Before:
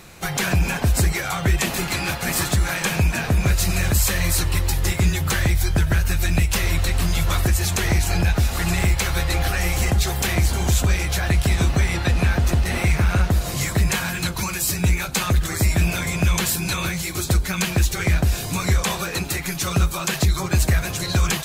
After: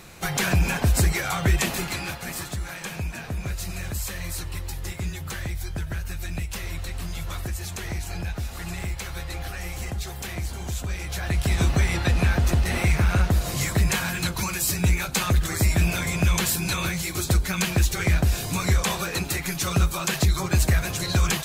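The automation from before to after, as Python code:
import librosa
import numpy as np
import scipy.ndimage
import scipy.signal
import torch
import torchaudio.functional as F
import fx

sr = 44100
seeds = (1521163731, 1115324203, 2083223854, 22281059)

y = fx.gain(x, sr, db=fx.line((1.58, -1.5), (2.46, -11.5), (10.85, -11.5), (11.64, -2.0)))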